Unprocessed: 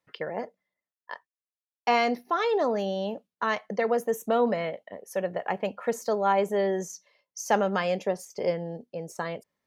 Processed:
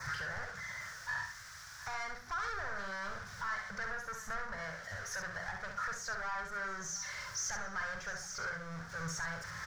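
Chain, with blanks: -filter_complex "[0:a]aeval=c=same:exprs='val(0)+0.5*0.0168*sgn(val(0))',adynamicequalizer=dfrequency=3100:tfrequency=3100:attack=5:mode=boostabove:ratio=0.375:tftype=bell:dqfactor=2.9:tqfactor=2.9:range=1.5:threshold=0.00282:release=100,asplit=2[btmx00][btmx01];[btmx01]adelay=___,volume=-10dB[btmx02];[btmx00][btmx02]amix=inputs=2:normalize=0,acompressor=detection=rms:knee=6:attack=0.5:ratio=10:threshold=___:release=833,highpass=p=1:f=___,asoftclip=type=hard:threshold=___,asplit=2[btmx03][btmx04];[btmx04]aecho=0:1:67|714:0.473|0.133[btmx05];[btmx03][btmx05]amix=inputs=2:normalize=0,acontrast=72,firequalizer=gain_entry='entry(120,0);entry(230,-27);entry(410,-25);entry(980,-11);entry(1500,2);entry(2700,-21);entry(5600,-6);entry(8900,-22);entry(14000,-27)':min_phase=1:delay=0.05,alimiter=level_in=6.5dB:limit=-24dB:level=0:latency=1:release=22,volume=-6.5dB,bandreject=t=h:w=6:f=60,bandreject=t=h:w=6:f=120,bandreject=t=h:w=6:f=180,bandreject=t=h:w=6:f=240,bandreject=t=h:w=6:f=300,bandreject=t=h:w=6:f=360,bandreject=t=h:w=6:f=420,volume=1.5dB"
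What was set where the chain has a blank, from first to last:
49, -25dB, 46, -34dB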